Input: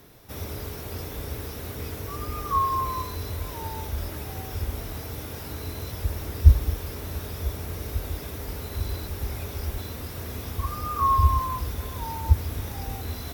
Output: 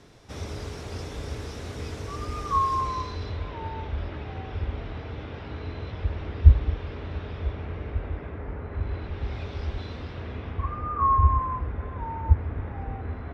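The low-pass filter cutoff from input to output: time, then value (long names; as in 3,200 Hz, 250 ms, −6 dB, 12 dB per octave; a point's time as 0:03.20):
low-pass filter 24 dB per octave
0:02.73 7,900 Hz
0:03.52 3,300 Hz
0:07.32 3,300 Hz
0:08.63 1,900 Hz
0:09.39 4,100 Hz
0:09.96 4,100 Hz
0:10.92 2,000 Hz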